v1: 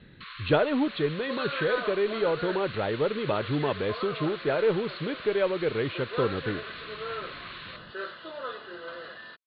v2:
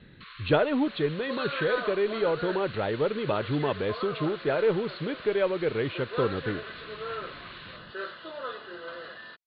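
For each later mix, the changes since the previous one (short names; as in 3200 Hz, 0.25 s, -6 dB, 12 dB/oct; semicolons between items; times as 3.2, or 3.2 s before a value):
first sound -4.0 dB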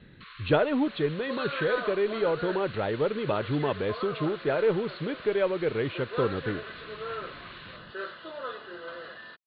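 master: add air absorption 70 m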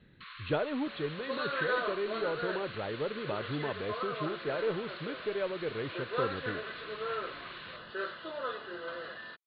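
speech -8.0 dB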